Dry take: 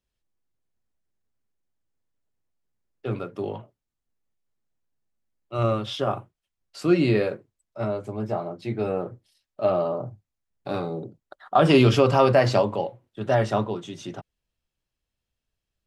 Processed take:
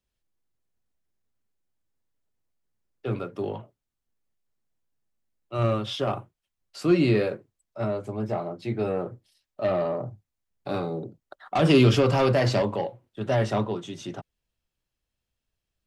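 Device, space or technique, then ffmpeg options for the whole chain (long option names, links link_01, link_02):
one-band saturation: -filter_complex "[0:a]acrossover=split=380|2700[link_01][link_02][link_03];[link_02]asoftclip=type=tanh:threshold=-21.5dB[link_04];[link_01][link_04][link_03]amix=inputs=3:normalize=0"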